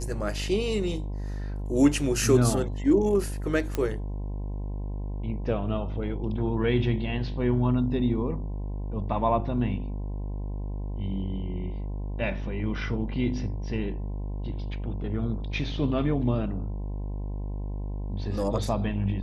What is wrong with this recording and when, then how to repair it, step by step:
mains buzz 50 Hz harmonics 21 −32 dBFS
0:03.75: click −14 dBFS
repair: click removal
hum removal 50 Hz, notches 21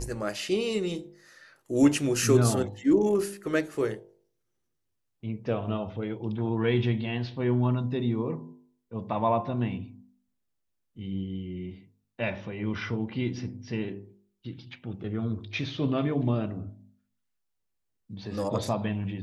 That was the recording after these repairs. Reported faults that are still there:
none of them is left

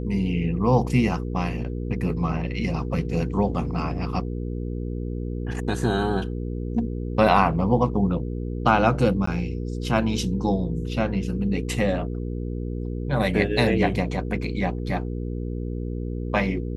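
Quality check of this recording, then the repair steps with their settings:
mains hum 60 Hz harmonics 8 −29 dBFS
0:09.26–0:09.27: drop-out 14 ms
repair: hum removal 60 Hz, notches 8
repair the gap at 0:09.26, 14 ms

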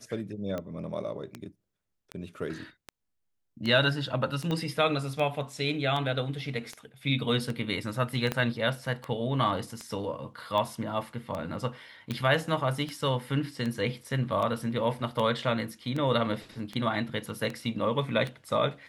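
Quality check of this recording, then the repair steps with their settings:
scratch tick 78 rpm −21 dBFS
0:04.51: click −19 dBFS
0:08.32: click −14 dBFS
0:12.11: click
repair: click removal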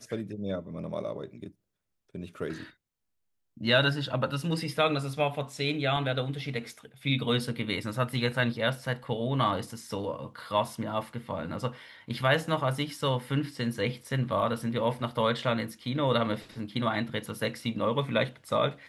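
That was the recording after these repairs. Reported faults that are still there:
0:04.51: click
0:08.32: click

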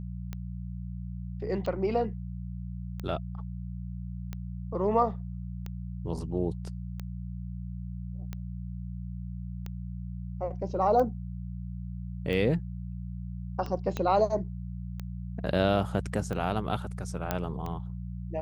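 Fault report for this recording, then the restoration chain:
mains hum 60 Hz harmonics 3 −37 dBFS
scratch tick 45 rpm −23 dBFS
0:13.97: click −18 dBFS
0:17.31: click −13 dBFS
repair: click removal
hum removal 60 Hz, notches 3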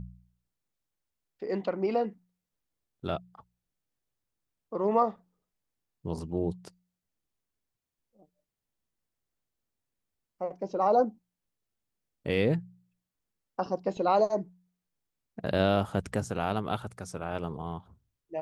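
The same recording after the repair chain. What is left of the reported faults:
0:13.97: click

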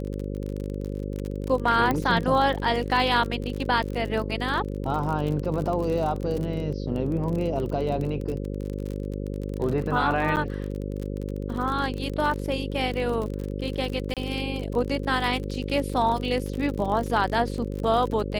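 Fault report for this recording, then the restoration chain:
mains buzz 50 Hz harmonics 11 −31 dBFS
surface crackle 43 per second −29 dBFS
0:01.91: click −12 dBFS
0:10.36–0:10.37: drop-out 9.1 ms
0:14.14–0:14.17: drop-out 27 ms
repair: click removal
hum removal 50 Hz, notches 11
repair the gap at 0:10.36, 9.1 ms
repair the gap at 0:14.14, 27 ms

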